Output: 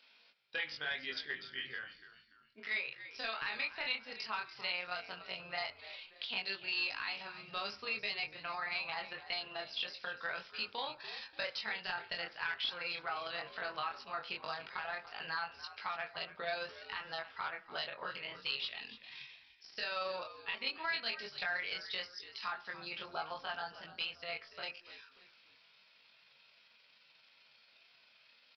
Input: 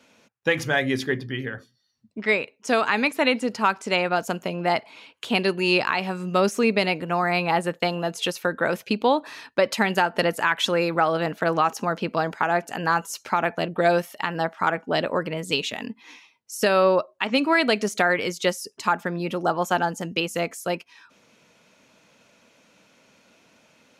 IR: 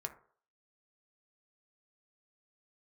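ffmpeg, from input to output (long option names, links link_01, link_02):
-filter_complex "[0:a]highpass=67,tremolo=f=27:d=0.571,aderivative,acompressor=threshold=-46dB:ratio=2,asubboost=boost=5.5:cutoff=110,asoftclip=type=hard:threshold=-35dB,flanger=delay=19:depth=3.9:speed=0.15,atempo=0.84,asplit=4[link_01][link_02][link_03][link_04];[link_02]adelay=290,afreqshift=-84,volume=-14.5dB[link_05];[link_03]adelay=580,afreqshift=-168,volume=-23.4dB[link_06];[link_04]adelay=870,afreqshift=-252,volume=-32.2dB[link_07];[link_01][link_05][link_06][link_07]amix=inputs=4:normalize=0,asplit=2[link_08][link_09];[1:a]atrim=start_sample=2205[link_10];[link_09][link_10]afir=irnorm=-1:irlink=0,volume=0.5dB[link_11];[link_08][link_11]amix=inputs=2:normalize=0,aresample=11025,aresample=44100,volume=5.5dB"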